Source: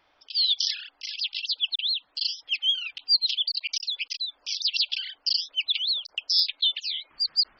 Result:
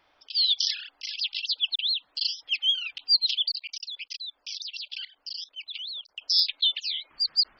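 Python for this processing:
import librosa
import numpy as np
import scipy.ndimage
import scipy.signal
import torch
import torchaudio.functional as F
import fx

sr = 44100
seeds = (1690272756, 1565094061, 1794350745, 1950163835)

y = fx.level_steps(x, sr, step_db=18, at=(3.57, 6.22))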